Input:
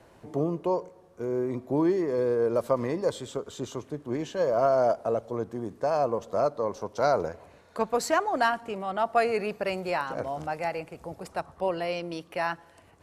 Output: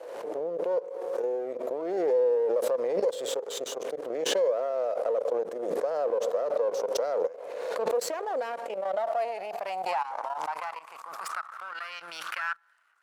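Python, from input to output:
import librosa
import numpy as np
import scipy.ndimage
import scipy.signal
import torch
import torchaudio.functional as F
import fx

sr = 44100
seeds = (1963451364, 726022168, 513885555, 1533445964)

y = np.where(x < 0.0, 10.0 ** (-12.0 / 20.0) * x, x)
y = fx.dynamic_eq(y, sr, hz=180.0, q=2.8, threshold_db=-50.0, ratio=4.0, max_db=6)
y = fx.level_steps(y, sr, step_db=17)
y = fx.filter_sweep_highpass(y, sr, from_hz=500.0, to_hz=1400.0, start_s=8.44, end_s=11.7, q=7.3)
y = fx.pre_swell(y, sr, db_per_s=32.0)
y = y * librosa.db_to_amplitude(-3.0)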